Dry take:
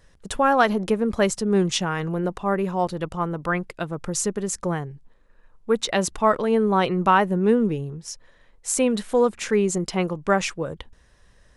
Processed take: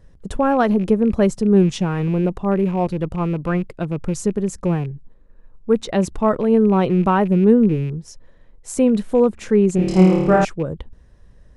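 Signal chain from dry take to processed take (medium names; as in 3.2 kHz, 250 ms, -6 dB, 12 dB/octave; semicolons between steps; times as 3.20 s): rattle on loud lows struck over -31 dBFS, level -27 dBFS; tilt shelf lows +8 dB, about 670 Hz; 9.76–10.45 s: flutter echo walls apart 4.6 m, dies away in 1.1 s; trim +1 dB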